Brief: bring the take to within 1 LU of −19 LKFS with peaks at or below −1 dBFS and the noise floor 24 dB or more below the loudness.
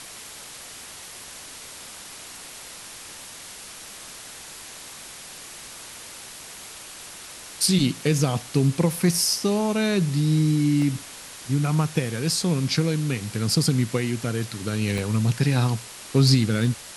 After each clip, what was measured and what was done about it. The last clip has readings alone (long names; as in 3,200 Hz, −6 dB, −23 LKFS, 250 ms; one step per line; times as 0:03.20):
number of dropouts 3; longest dropout 1.4 ms; background noise floor −41 dBFS; target noise floor −47 dBFS; integrated loudness −23.0 LKFS; sample peak −7.0 dBFS; target loudness −19.0 LKFS
→ repair the gap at 0:10.82/0:14.98/0:16.64, 1.4 ms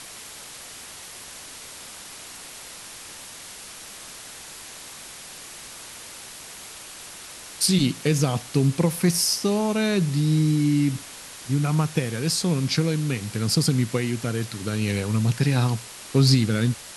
number of dropouts 0; background noise floor −41 dBFS; target noise floor −47 dBFS
→ broadband denoise 6 dB, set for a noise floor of −41 dBFS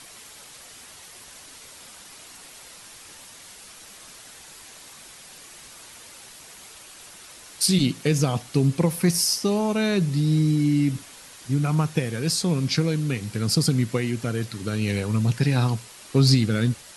background noise floor −46 dBFS; target noise floor −47 dBFS
→ broadband denoise 6 dB, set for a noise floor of −46 dBFS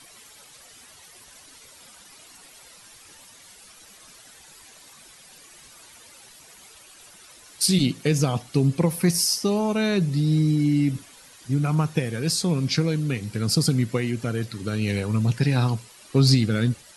background noise floor −50 dBFS; integrated loudness −23.0 LKFS; sample peak −7.5 dBFS; target loudness −19.0 LKFS
→ level +4 dB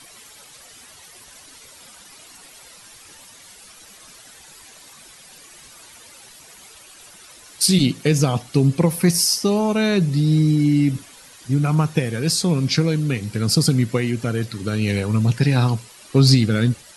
integrated loudness −19.0 LKFS; sample peak −3.5 dBFS; background noise floor −46 dBFS